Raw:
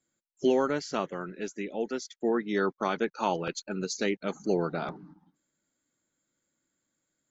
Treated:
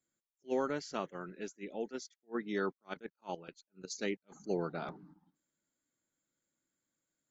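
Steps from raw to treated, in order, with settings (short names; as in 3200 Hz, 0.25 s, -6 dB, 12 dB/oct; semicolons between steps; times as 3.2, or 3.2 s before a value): 2.85–3.9 level quantiser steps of 15 dB; attack slew limiter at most 420 dB/s; gain -7 dB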